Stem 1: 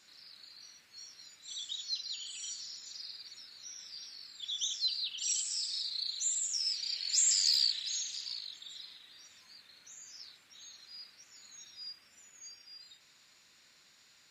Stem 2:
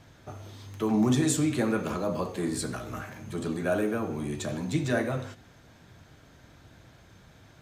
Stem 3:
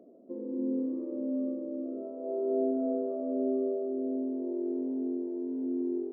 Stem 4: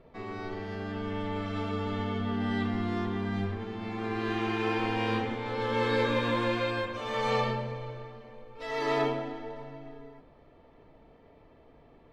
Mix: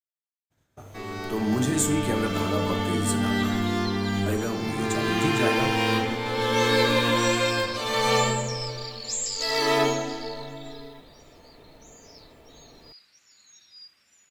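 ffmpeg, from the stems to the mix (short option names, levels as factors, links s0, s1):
-filter_complex "[0:a]adelay=1950,volume=0.562[s0];[1:a]agate=range=0.0224:threshold=0.00631:ratio=3:detection=peak,aexciter=amount=2.2:drive=5.4:freq=6800,adelay=500,volume=0.668,asplit=3[s1][s2][s3];[s1]atrim=end=3.72,asetpts=PTS-STARTPTS,afade=t=out:st=3.716:d=0.004:c=hsin[s4];[s2]atrim=start=3.72:end=4.26,asetpts=PTS-STARTPTS,volume=0[s5];[s3]atrim=start=4.26,asetpts=PTS-STARTPTS,afade=t=in:d=0.004:c=hsin[s6];[s4][s5][s6]concat=n=3:v=0:a=1[s7];[3:a]aemphasis=mode=production:type=cd,crystalizer=i=1.5:c=0,adelay=800,volume=1.33[s8];[s0][s7][s8]amix=inputs=3:normalize=0,dynaudnorm=f=260:g=11:m=1.41"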